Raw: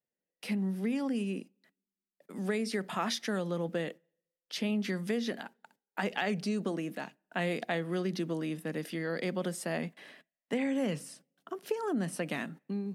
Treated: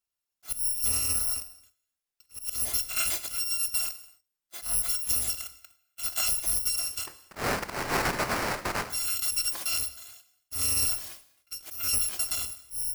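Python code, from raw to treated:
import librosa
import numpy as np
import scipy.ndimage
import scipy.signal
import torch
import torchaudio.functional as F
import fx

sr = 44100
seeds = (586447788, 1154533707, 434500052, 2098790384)

y = fx.bit_reversed(x, sr, seeds[0], block=256)
y = fx.sample_hold(y, sr, seeds[1], rate_hz=3500.0, jitter_pct=20, at=(7.06, 8.89), fade=0.02)
y = fx.auto_swell(y, sr, attack_ms=129.0)
y = fx.rev_gated(y, sr, seeds[2], gate_ms=310, shape='falling', drr_db=11.5)
y = y * librosa.db_to_amplitude(4.5)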